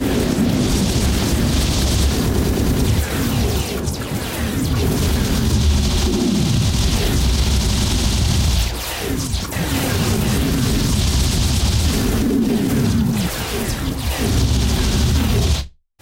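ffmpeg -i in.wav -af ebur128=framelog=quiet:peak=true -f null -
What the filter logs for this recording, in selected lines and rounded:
Integrated loudness:
  I:         -18.2 LUFS
  Threshold: -28.3 LUFS
Loudness range:
  LRA:         1.6 LU
  Threshold: -38.3 LUFS
  LRA low:   -19.1 LUFS
  LRA high:  -17.5 LUFS
True peak:
  Peak:       -6.2 dBFS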